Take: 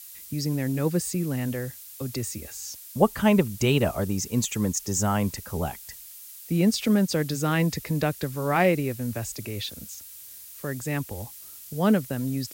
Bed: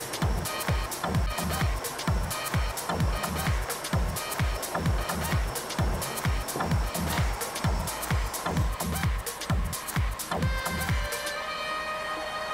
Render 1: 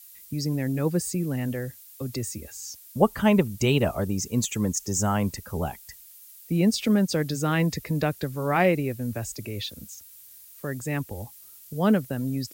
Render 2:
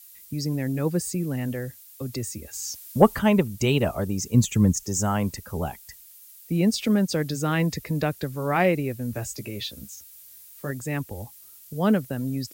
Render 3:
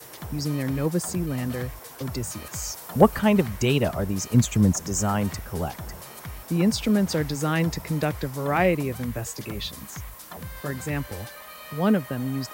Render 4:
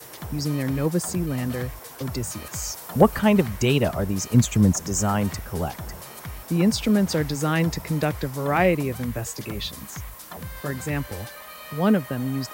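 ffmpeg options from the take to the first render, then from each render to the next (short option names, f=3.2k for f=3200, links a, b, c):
-af "afftdn=nr=7:nf=-44"
-filter_complex "[0:a]asettb=1/sr,asplit=3[a][b][c];[a]atrim=end=2.534[d];[b]atrim=start=2.53:end=3.19,asetpts=PTS-STARTPTS,afade=t=in:d=0.004:c=qsin,afade=t=out:st=0.656:d=0.004:c=qsin,acontrast=30[e];[c]atrim=start=3.186[f];[d][e]acrossfade=d=0.004:c1=hsin:c2=qsin[g];[g][f]acrossfade=d=0.004:c1=qsin:c2=hsin,asettb=1/sr,asplit=3[h][i][j];[h]atrim=end=4.344[k];[i]atrim=start=4.34:end=4.83,asetpts=PTS-STARTPTS,afade=t=in:d=0.004:c=qsin,afade=t=out:st=0.486:d=0.004:c=qsin,bass=f=250:g=10,treble=f=4k:g=-1[l];[j]atrim=start=4.826[m];[k][l]acrossfade=d=0.004:c1=hsin:c2=qsin[n];[n][m]acrossfade=d=0.004:c1=qsin:c2=hsin,asettb=1/sr,asplit=3[o][p][q];[o]atrim=end=9.124[r];[p]atrim=start=9.12:end=10.71,asetpts=PTS-STARTPTS,afade=t=in:d=0.004:c=qsin,afade=t=out:st=1.586:d=0.004:c=qsin,asplit=2[s][t];[t]adelay=15,volume=-6dB[u];[s][u]amix=inputs=2:normalize=0,atrim=end_sample=70119[v];[q]atrim=start=10.706[w];[r][v]acrossfade=d=0.004:c1=hsin:c2=qsin[x];[x][w]acrossfade=d=0.004:c1=qsin:c2=hsin"
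-filter_complex "[1:a]volume=-10.5dB[a];[0:a][a]amix=inputs=2:normalize=0"
-af "volume=1.5dB,alimiter=limit=-3dB:level=0:latency=1"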